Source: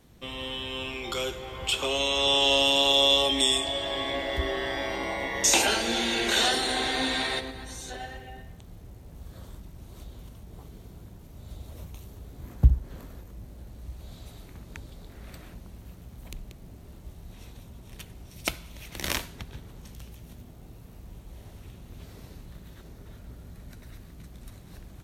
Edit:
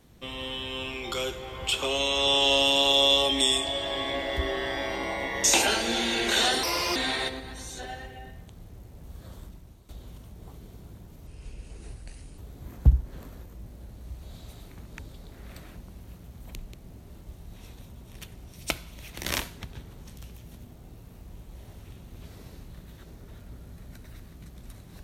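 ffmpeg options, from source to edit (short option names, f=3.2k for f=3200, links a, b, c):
-filter_complex "[0:a]asplit=6[a][b][c][d][e][f];[a]atrim=end=6.634[g];[b]atrim=start=6.63:end=7.07,asetpts=PTS-STARTPTS,asetrate=59094,aresample=44100[h];[c]atrim=start=7.066:end=10,asetpts=PTS-STARTPTS,afade=t=out:st=2.504:d=0.43:silence=0.188365[i];[d]atrim=start=10:end=11.384,asetpts=PTS-STARTPTS,afade=t=in:d=0.004:c=hsin:silence=0.188365[j];[e]atrim=start=11.38:end=12.16,asetpts=PTS-STARTPTS,asetrate=30870,aresample=44100[k];[f]atrim=start=12.156[l];[g][h]acrossfade=d=0.004:c1=hsin:c2=hsin[m];[i][j]concat=n=2:v=0:a=1[n];[m][n]acrossfade=d=0.004:c1=hsin:c2=hsin[o];[o][k]acrossfade=d=0.004:c1=hsin:c2=hsin[p];[p][l]acrossfade=d=0.004:c1=hsin:c2=hsin"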